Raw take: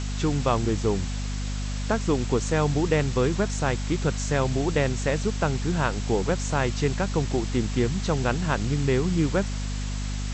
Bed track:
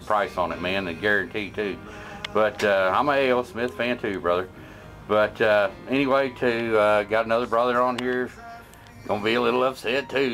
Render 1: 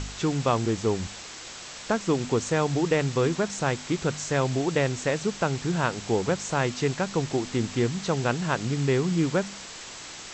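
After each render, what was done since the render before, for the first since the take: de-hum 50 Hz, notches 5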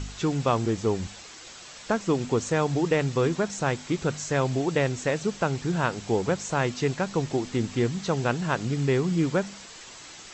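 denoiser 6 dB, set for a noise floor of -41 dBFS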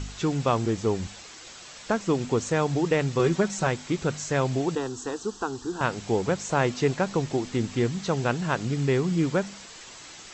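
3.19–3.67 comb 5.3 ms, depth 68%; 4.75–5.81 fixed phaser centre 590 Hz, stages 6; 6.49–7.17 bell 530 Hz +3 dB 2.6 oct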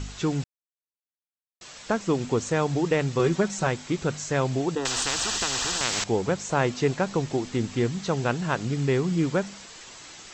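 0.44–1.61 mute; 4.85–6.04 spectral compressor 10:1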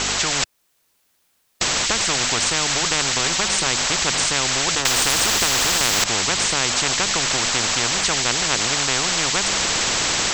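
AGC gain up to 7.5 dB; spectral compressor 10:1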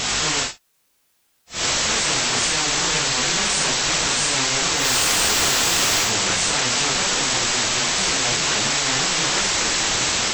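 phase scrambler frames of 0.2 s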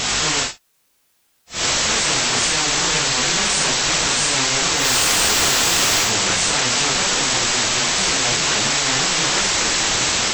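gain +2 dB

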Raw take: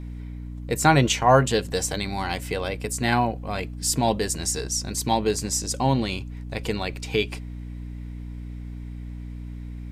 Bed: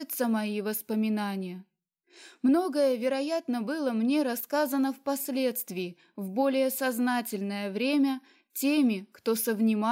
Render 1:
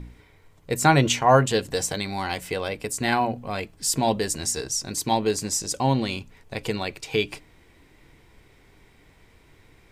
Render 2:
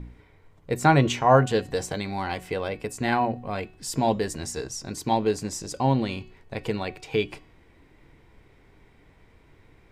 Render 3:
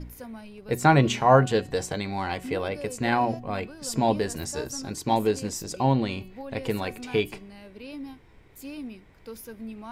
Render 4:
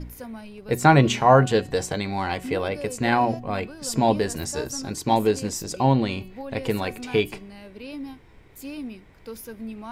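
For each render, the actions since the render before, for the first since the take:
de-hum 60 Hz, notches 5
high shelf 3300 Hz -11 dB; de-hum 370.5 Hz, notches 20
add bed -13.5 dB
gain +3 dB; limiter -3 dBFS, peak gain reduction 2 dB

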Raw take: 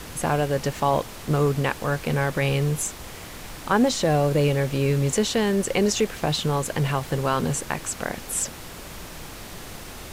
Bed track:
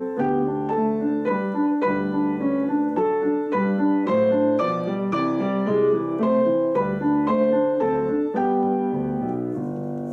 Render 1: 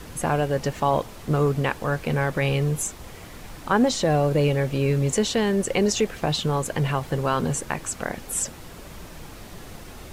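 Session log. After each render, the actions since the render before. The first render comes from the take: denoiser 6 dB, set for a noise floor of -39 dBFS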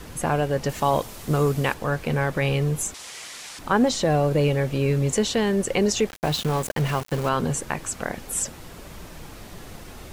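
0.69–1.74 high shelf 4700 Hz +9.5 dB; 2.94–3.59 weighting filter ITU-R 468; 6.09–7.29 sample gate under -30 dBFS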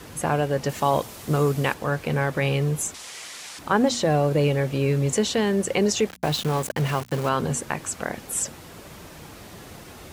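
HPF 67 Hz; notches 60/120/180/240 Hz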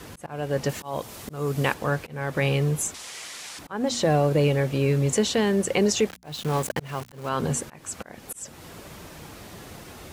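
auto swell 0.325 s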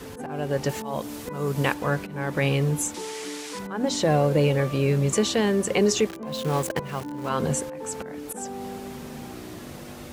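add bed track -14.5 dB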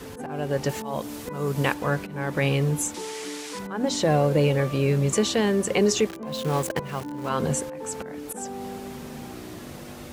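nothing audible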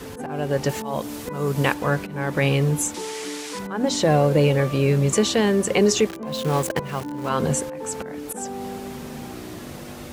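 gain +3 dB

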